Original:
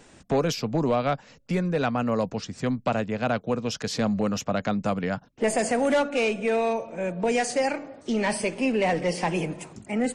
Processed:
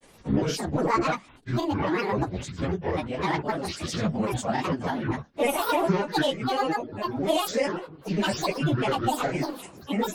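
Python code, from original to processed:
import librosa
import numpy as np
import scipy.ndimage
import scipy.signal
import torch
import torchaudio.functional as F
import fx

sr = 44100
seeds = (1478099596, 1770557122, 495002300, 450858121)

y = fx.phase_scramble(x, sr, seeds[0], window_ms=100)
y = fx.granulator(y, sr, seeds[1], grain_ms=100.0, per_s=20.0, spray_ms=18.0, spread_st=12)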